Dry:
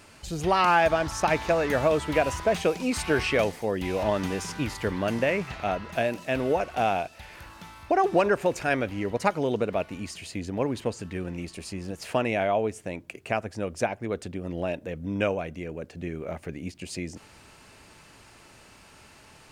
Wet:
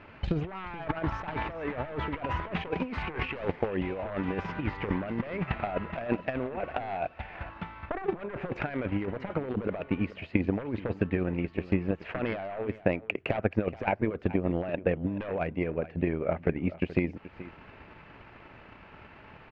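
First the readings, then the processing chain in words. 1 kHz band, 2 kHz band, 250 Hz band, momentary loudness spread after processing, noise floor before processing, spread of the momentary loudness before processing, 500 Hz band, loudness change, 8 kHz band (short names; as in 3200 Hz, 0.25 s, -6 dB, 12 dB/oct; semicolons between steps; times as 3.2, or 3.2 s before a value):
-8.5 dB, -6.0 dB, -0.5 dB, 16 LU, -53 dBFS, 14 LU, -6.0 dB, -5.0 dB, under -30 dB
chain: one-sided fold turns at -20.5 dBFS; negative-ratio compressor -32 dBFS, ratio -1; LPF 2600 Hz 24 dB/oct; transient shaper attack +10 dB, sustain -5 dB; echo 0.428 s -16.5 dB; gain -1.5 dB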